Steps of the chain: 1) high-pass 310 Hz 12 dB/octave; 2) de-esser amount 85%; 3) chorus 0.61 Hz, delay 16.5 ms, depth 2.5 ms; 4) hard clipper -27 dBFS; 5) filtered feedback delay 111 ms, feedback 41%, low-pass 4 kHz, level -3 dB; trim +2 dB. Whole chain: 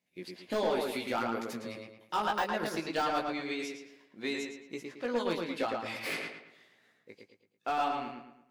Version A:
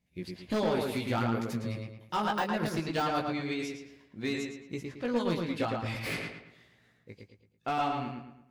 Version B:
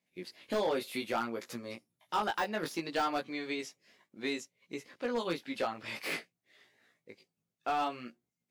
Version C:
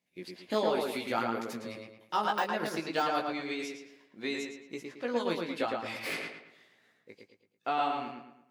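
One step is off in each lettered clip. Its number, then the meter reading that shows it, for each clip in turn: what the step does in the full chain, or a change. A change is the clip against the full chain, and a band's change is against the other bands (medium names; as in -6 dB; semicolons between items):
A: 1, 125 Hz band +13.5 dB; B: 5, 8 kHz band +1.5 dB; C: 4, distortion -15 dB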